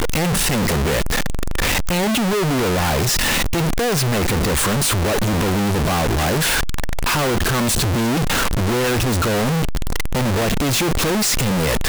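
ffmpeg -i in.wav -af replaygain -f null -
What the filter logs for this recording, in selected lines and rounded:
track_gain = +2.3 dB
track_peak = 0.089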